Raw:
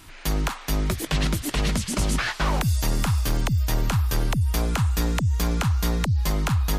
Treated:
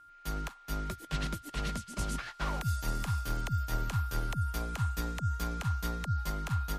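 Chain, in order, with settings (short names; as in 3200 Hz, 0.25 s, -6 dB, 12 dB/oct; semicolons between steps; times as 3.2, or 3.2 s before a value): whine 1400 Hz -28 dBFS; upward expander 2.5:1, over -30 dBFS; gain -8 dB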